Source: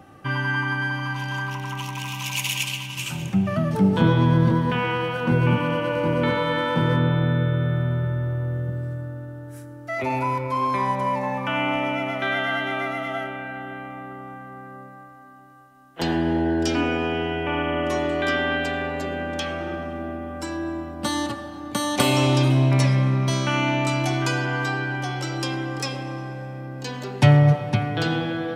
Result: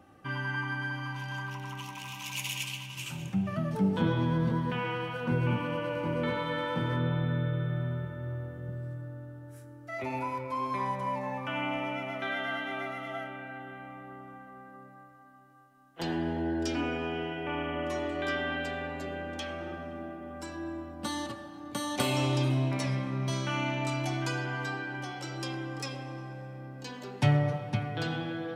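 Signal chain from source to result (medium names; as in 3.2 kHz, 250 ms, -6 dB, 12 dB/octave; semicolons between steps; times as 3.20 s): flange 0.24 Hz, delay 3.2 ms, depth 8.8 ms, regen -64%; trim -5 dB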